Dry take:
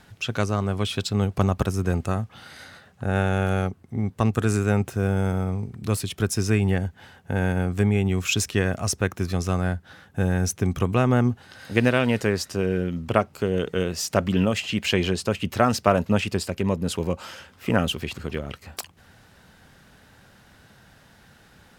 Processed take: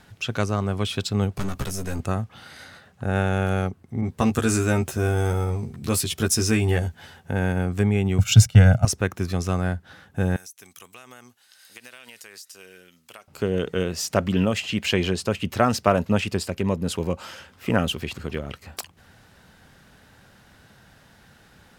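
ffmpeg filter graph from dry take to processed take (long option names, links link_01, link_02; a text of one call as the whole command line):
ffmpeg -i in.wav -filter_complex "[0:a]asettb=1/sr,asplit=3[link_01][link_02][link_03];[link_01]atrim=end=1.374[link_04];[link_02]atrim=start=1.37:end=2,asetpts=PTS-STARTPTS,afade=type=in:duration=0.004:curve=qsin,afade=type=out:start_time=0.626:duration=0.004:curve=qsin,aeval=exprs='(tanh(14.1*val(0)+0.5)-tanh(0.5))/14.1':channel_layout=same,highshelf=frequency=4500:gain=9.5,asplit=2[link_05][link_06];[link_06]adelay=15,volume=-6dB[link_07];[link_05][link_07]amix=inputs=2:normalize=0,atrim=end_sample=27783[link_08];[link_03]atrim=start=1.996[link_09];[link_04][link_08]acrossfade=duration=0.004:curve1=hsin:curve2=qsin[link_10];[link_10][link_09]acrossfade=duration=0.004:curve1=qsin:curve2=hsin,asettb=1/sr,asplit=3[link_11][link_12][link_13];[link_11]atrim=end=4.014[link_14];[link_12]atrim=start=4.01:end=7.31,asetpts=PTS-STARTPTS,afade=type=in:duration=0.004:curve=qsin,afade=type=out:start_time=3.296:duration=0.004:curve=qsin,asplit=2[link_15][link_16];[link_16]adelay=13,volume=-3dB[link_17];[link_15][link_17]amix=inputs=2:normalize=0,atrim=end_sample=145530,adynamicequalizer=threshold=0.00562:dfrequency=3200:dqfactor=0.7:tfrequency=3200:tqfactor=0.7:attack=5:release=100:ratio=0.375:range=3:mode=boostabove:tftype=highshelf[link_18];[link_13]atrim=start=7.306[link_19];[link_14][link_18]acrossfade=duration=0.004:curve1=hsin:curve2=qsin[link_20];[link_20][link_19]acrossfade=duration=0.004:curve1=qsin:curve2=hsin,asettb=1/sr,asplit=3[link_21][link_22][link_23];[link_21]atrim=end=8.184[link_24];[link_22]atrim=start=8.18:end=8.85,asetpts=PTS-STARTPTS,afade=type=in:duration=0.004:curve=qsin,afade=type=out:start_time=0.666:duration=0.004:curve=qsin,agate=range=-12dB:threshold=-32dB:ratio=16:release=100:detection=peak,equalizer=frequency=120:width_type=o:width=0.82:gain=14.5,aecho=1:1:1.4:0.96,atrim=end_sample=29547[link_25];[link_23]atrim=start=8.846[link_26];[link_24][link_25]acrossfade=duration=0.004:curve1=hsin:curve2=qsin[link_27];[link_27][link_26]acrossfade=duration=0.004:curve1=qsin:curve2=hsin,asettb=1/sr,asplit=3[link_28][link_29][link_30];[link_28]atrim=end=10.364[link_31];[link_29]atrim=start=10.36:end=13.28,asetpts=PTS-STARTPTS,afade=type=in:duration=0.004:curve=qsin,afade=type=out:start_time=2.916:duration=0.004:curve=qsin,aderivative,acompressor=threshold=-38dB:ratio=12:attack=3.2:release=140:knee=1:detection=peak[link_32];[link_30]atrim=start=13.276[link_33];[link_31][link_32]acrossfade=duration=0.004:curve1=hsin:curve2=qsin[link_34];[link_34][link_33]acrossfade=duration=0.004:curve1=qsin:curve2=hsin" out.wav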